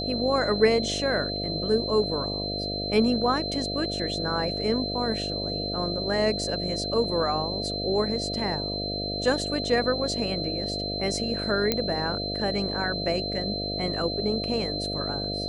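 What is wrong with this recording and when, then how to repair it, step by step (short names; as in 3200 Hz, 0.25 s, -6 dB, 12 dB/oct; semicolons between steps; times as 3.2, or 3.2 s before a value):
buzz 50 Hz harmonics 14 -33 dBFS
tone 4100 Hz -31 dBFS
11.72 pop -8 dBFS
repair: de-click; de-hum 50 Hz, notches 14; notch 4100 Hz, Q 30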